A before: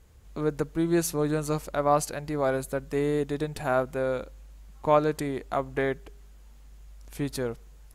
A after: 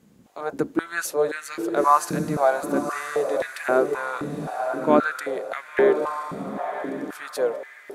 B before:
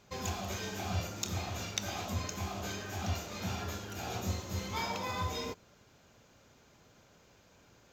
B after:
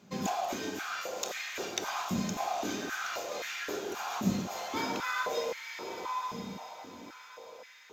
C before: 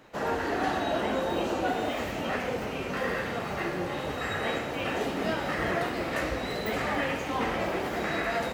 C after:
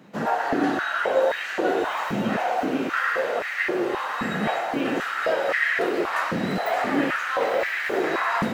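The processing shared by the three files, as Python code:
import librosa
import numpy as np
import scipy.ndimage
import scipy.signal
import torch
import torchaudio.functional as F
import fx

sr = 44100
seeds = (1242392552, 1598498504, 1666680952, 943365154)

p1 = fx.octave_divider(x, sr, octaves=1, level_db=2.0)
p2 = p1 + fx.echo_diffused(p1, sr, ms=994, feedback_pct=41, wet_db=-6.5, dry=0)
p3 = fx.dynamic_eq(p2, sr, hz=1500.0, q=3.0, threshold_db=-47.0, ratio=4.0, max_db=4)
y = fx.filter_held_highpass(p3, sr, hz=3.8, low_hz=200.0, high_hz=1900.0)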